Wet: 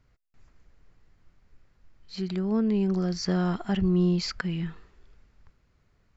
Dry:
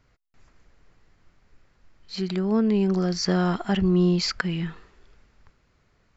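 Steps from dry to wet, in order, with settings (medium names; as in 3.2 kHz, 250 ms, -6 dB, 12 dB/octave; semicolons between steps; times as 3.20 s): bass shelf 200 Hz +6.5 dB; trim -6 dB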